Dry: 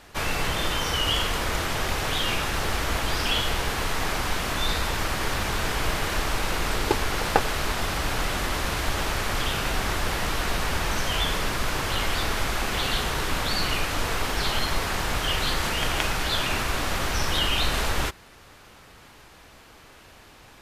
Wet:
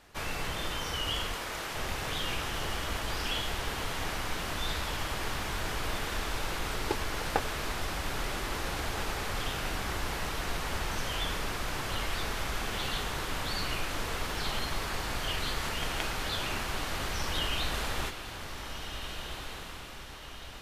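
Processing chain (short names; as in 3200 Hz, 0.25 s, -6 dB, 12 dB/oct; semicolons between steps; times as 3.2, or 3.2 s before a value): 1.34–1.76 low shelf 190 Hz -11.5 dB; on a send: diffused feedback echo 1.624 s, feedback 50%, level -7.5 dB; on the sum: gain -8.5 dB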